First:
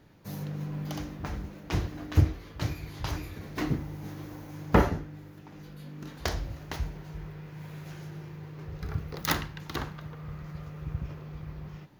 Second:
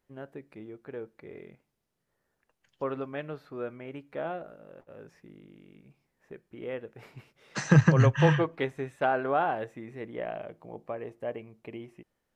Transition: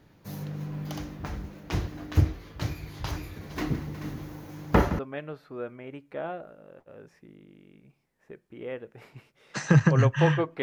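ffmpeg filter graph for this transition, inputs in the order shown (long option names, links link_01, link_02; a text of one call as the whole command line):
ffmpeg -i cue0.wav -i cue1.wav -filter_complex "[0:a]asplit=3[link_01][link_02][link_03];[link_01]afade=type=out:start_time=3.49:duration=0.02[link_04];[link_02]aecho=1:1:165|234|364|433:0.2|0.106|0.178|0.266,afade=type=in:start_time=3.49:duration=0.02,afade=type=out:start_time=4.99:duration=0.02[link_05];[link_03]afade=type=in:start_time=4.99:duration=0.02[link_06];[link_04][link_05][link_06]amix=inputs=3:normalize=0,apad=whole_dur=10.62,atrim=end=10.62,atrim=end=4.992[link_07];[1:a]atrim=start=2.998:end=8.63[link_08];[link_07][link_08]acrossfade=duration=0.004:curve1=hsin:curve2=hsin" out.wav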